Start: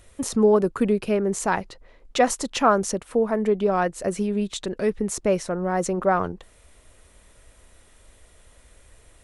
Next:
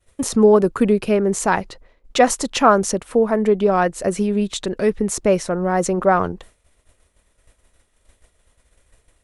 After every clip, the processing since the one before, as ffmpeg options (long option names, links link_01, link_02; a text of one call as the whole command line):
ffmpeg -i in.wav -af "agate=range=-33dB:threshold=-42dB:ratio=3:detection=peak,volume=5dB" out.wav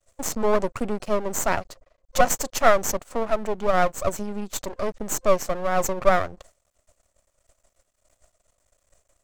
ffmpeg -i in.wav -af "superequalizer=8b=3.55:9b=1.58:10b=1.58:14b=2.24:15b=3.98,aeval=exprs='max(val(0),0)':channel_layout=same,volume=-7dB" out.wav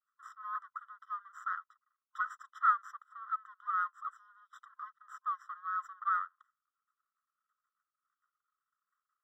ffmpeg -i in.wav -af "bandpass=frequency=1300:width_type=q:width=8.6:csg=0,afftfilt=real='re*eq(mod(floor(b*sr/1024/1000),2),1)':imag='im*eq(mod(floor(b*sr/1024/1000),2),1)':win_size=1024:overlap=0.75,volume=-1.5dB" out.wav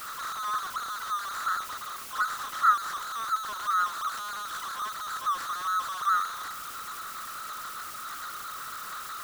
ffmpeg -i in.wav -af "aeval=exprs='val(0)+0.5*0.0178*sgn(val(0))':channel_layout=same,volume=4.5dB" out.wav